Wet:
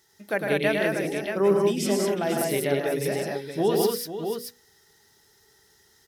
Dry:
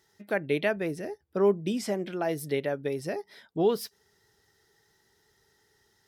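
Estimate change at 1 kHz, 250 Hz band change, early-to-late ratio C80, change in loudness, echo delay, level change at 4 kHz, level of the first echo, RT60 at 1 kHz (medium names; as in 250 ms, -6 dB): +5.5 dB, +4.5 dB, no reverb, +4.5 dB, 105 ms, +8.0 dB, -5.0 dB, no reverb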